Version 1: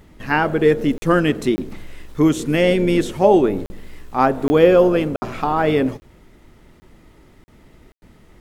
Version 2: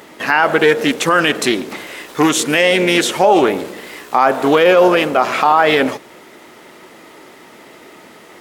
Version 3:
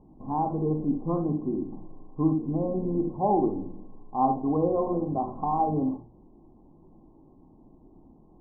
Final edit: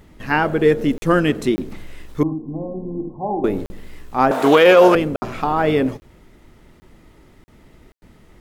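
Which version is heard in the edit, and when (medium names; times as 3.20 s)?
1
2.23–3.44 s: from 3
4.31–4.95 s: from 2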